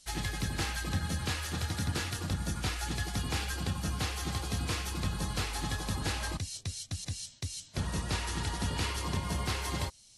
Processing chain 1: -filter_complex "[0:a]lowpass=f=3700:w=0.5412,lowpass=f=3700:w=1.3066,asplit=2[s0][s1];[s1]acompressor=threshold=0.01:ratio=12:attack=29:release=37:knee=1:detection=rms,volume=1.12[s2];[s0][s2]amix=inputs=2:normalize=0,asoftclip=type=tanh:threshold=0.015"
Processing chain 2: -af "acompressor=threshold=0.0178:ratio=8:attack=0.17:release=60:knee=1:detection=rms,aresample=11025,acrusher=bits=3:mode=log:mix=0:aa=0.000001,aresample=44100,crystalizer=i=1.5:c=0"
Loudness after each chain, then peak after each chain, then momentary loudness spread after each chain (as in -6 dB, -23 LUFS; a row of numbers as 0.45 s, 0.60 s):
-40.0 LUFS, -41.0 LUFS; -36.5 dBFS, -27.5 dBFS; 3 LU, 2 LU